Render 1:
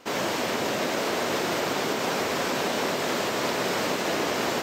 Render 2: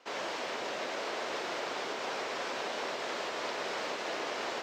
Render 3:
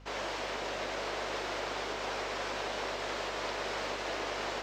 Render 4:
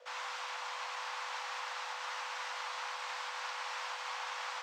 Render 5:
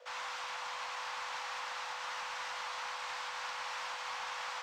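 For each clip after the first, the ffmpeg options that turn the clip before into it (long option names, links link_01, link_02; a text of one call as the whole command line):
ffmpeg -i in.wav -filter_complex "[0:a]acrossover=split=370 6800:gain=0.2 1 0.1[link_01][link_02][link_03];[link_01][link_02][link_03]amix=inputs=3:normalize=0,volume=-8dB" out.wav
ffmpeg -i in.wav -af "aeval=exprs='val(0)+0.00251*(sin(2*PI*50*n/s)+sin(2*PI*2*50*n/s)/2+sin(2*PI*3*50*n/s)/3+sin(2*PI*4*50*n/s)/4+sin(2*PI*5*50*n/s)/5)':channel_layout=same" out.wav
ffmpeg -i in.wav -af "afreqshift=450,volume=-4.5dB" out.wav
ffmpeg -i in.wav -af "asoftclip=type=tanh:threshold=-32.5dB,volume=1dB" out.wav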